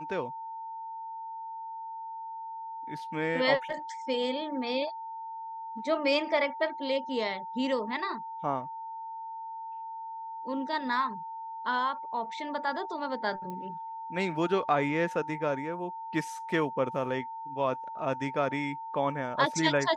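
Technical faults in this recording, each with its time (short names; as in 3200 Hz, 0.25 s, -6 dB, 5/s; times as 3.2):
tone 900 Hz -37 dBFS
13.5 pop -27 dBFS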